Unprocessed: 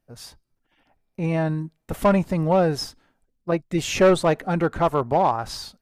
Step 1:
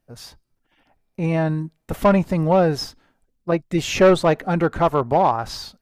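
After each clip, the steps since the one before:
dynamic equaliser 9,200 Hz, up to −6 dB, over −51 dBFS, Q 1.5
level +2.5 dB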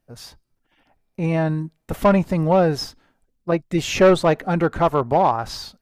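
no processing that can be heard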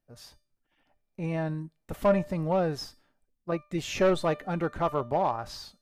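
tuned comb filter 600 Hz, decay 0.34 s, mix 70%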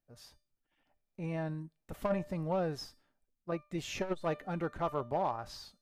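saturating transformer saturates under 200 Hz
level −6 dB

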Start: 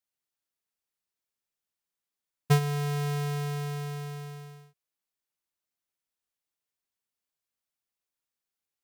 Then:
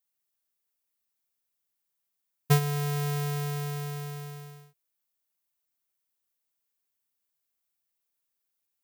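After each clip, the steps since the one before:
high-shelf EQ 11,000 Hz +12 dB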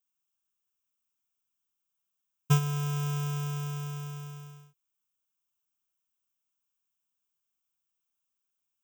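phaser with its sweep stopped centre 2,900 Hz, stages 8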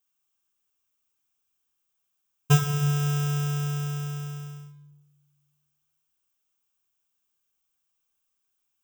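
convolution reverb RT60 0.85 s, pre-delay 3 ms, DRR 4.5 dB
level +5 dB

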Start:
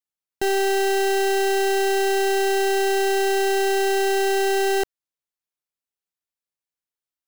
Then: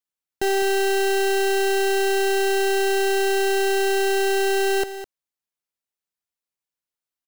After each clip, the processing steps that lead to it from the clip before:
single-tap delay 207 ms −12.5 dB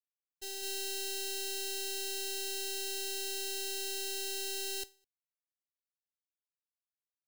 downward expander −14 dBFS
drawn EQ curve 110 Hz 0 dB, 1,300 Hz −11 dB, 4,000 Hz +12 dB
level −9 dB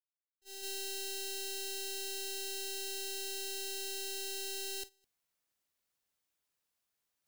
noise gate −40 dBFS, range −28 dB
reversed playback
upward compression, threshold −50 dBFS
reversed playback
level −2.5 dB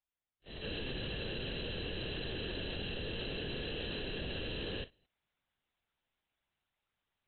linear-prediction vocoder at 8 kHz whisper
level +4.5 dB
AAC 96 kbit/s 32,000 Hz

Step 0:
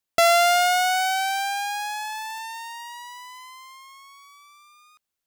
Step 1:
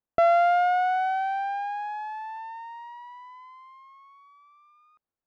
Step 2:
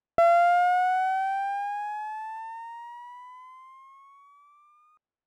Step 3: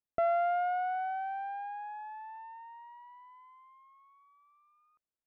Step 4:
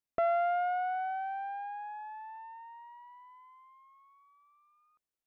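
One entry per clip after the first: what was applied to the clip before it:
low-pass filter 1,100 Hz 12 dB per octave
running median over 9 samples
high-frequency loss of the air 340 metres; level −7.5 dB
highs frequency-modulated by the lows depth 0.25 ms

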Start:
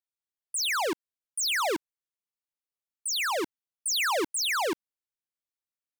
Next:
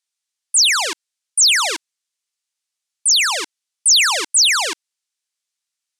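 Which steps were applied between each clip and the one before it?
meter weighting curve ITU-R 468
level +5 dB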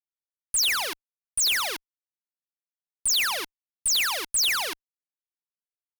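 in parallel at −9 dB: log-companded quantiser 2 bits
on the sum: fuzz pedal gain 33 dB, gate −36 dBFS
level −8 dB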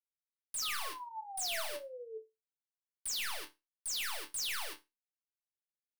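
leveller curve on the samples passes 5
sound drawn into the spectrogram fall, 0:00.62–0:02.18, 430–1,300 Hz −28 dBFS
resonators tuned to a chord D2 sus4, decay 0.22 s
level −8 dB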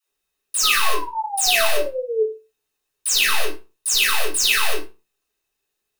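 hollow resonant body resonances 420/2,600/3,700 Hz, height 13 dB, ringing for 65 ms
all-pass dispersion lows, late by 86 ms, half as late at 370 Hz
convolution reverb RT60 0.25 s, pre-delay 3 ms, DRR −6.5 dB
level +8.5 dB

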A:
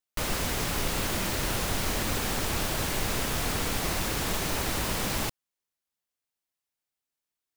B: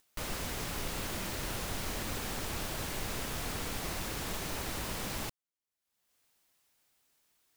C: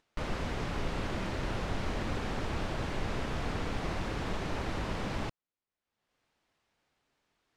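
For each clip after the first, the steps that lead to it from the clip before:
upward compression, threshold −46 dBFS; level −8 dB
head-to-tape spacing loss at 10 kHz 24 dB; level +5.5 dB

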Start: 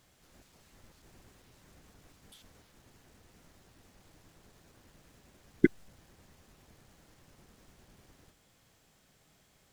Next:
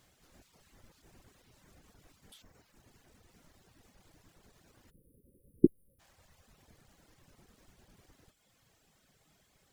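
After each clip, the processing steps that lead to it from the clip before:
time-frequency box erased 0:04.91–0:06.00, 560–9,100 Hz
reverb reduction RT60 1.1 s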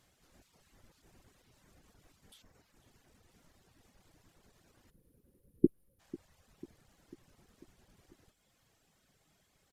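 downsampling to 32,000 Hz
repeating echo 495 ms, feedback 60%, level −19 dB
level −3 dB

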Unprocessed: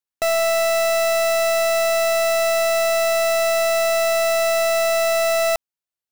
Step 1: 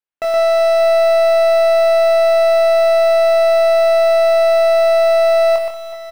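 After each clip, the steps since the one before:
bass and treble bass −6 dB, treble −14 dB
double-tracking delay 24 ms −5 dB
multi-tap delay 121/182/368/381/581/582 ms −4.5/−14/−14/−18.5/−13/−14.5 dB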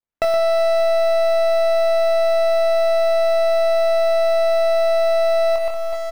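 running median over 15 samples
downward compressor 6 to 1, threshold −22 dBFS, peak gain reduction 10 dB
low-shelf EQ 120 Hz +8.5 dB
level +5 dB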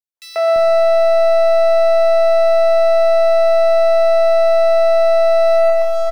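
in parallel at −0.5 dB: speech leveller within 4 dB
on the sum: tuned comb filter 220 Hz, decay 0.47 s, harmonics all, mix 70%
three-band delay without the direct sound highs, mids, lows 140/340 ms, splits 420/3,100 Hz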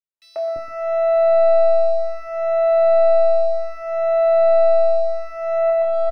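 low-pass filter 1,100 Hz 6 dB per octave
barber-pole flanger 2.7 ms −0.65 Hz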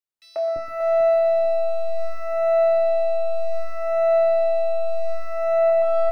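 brickwall limiter −13.5 dBFS, peak gain reduction 6.5 dB
on a send at −24 dB: convolution reverb RT60 0.15 s, pre-delay 3 ms
on the sum: feedback echo at a low word length 443 ms, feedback 55%, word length 9 bits, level −8 dB

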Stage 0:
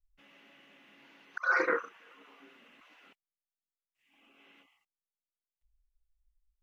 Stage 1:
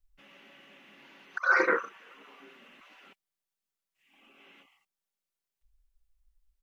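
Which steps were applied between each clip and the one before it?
comb filter 5.2 ms, depth 31%
level +4 dB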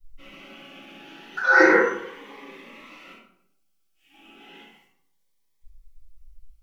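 convolution reverb RT60 0.70 s, pre-delay 4 ms, DRR −12 dB
phaser whose notches keep moving one way rising 0.33 Hz
level −3.5 dB

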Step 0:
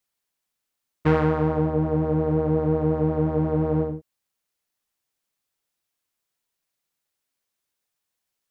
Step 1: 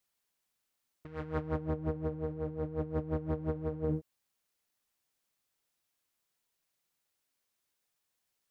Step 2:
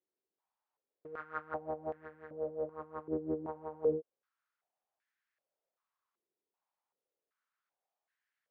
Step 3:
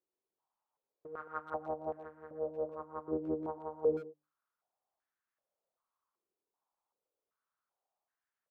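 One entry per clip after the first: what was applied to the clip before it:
dynamic equaliser 840 Hz, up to −7 dB, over −38 dBFS, Q 1.1; compressor whose output falls as the input rises −28 dBFS, ratio −0.5; level −6.5 dB
band-pass on a step sequencer 2.6 Hz 380–1,700 Hz; level +7.5 dB
high shelf with overshoot 1,500 Hz −7 dB, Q 1.5; mains-hum notches 50/100/150/200/250/300 Hz; far-end echo of a speakerphone 120 ms, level −12 dB

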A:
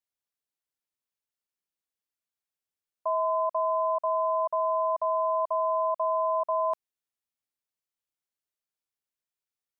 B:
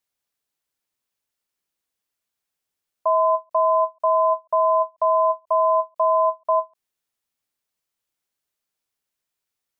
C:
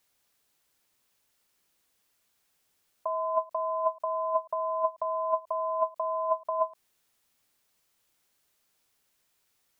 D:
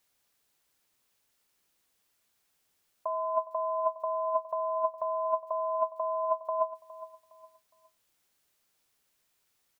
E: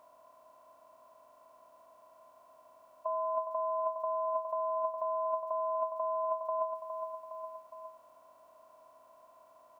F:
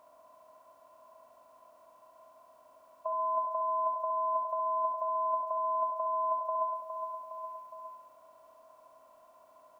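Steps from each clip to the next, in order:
every ending faded ahead of time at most 410 dB per second; level +8.5 dB
compressor whose output falls as the input rises −29 dBFS, ratio −1
repeating echo 412 ms, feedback 32%, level −16 dB; level −1.5 dB
compressor on every frequency bin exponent 0.4; level −6.5 dB
flutter between parallel walls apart 11.6 metres, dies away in 0.59 s

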